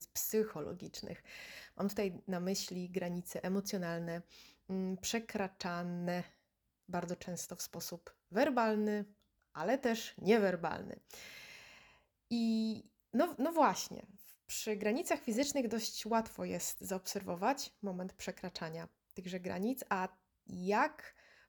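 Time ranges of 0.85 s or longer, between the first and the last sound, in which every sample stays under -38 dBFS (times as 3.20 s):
11.14–12.31 s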